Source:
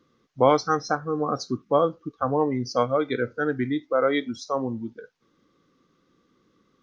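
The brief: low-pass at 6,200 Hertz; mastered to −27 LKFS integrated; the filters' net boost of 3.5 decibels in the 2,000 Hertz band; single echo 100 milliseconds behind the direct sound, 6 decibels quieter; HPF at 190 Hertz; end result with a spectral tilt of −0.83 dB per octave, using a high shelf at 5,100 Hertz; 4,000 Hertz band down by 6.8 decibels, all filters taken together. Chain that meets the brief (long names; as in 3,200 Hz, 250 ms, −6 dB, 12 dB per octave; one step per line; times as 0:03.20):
high-pass filter 190 Hz
low-pass filter 6,200 Hz
parametric band 2,000 Hz +7 dB
parametric band 4,000 Hz −7 dB
high-shelf EQ 5,100 Hz −6.5 dB
single-tap delay 100 ms −6 dB
level −3 dB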